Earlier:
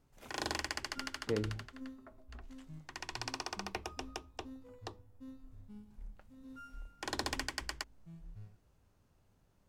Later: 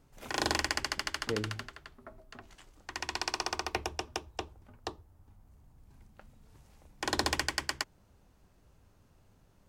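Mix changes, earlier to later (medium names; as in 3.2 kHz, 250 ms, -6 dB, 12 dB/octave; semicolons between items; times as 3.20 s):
first sound +7.0 dB; second sound: muted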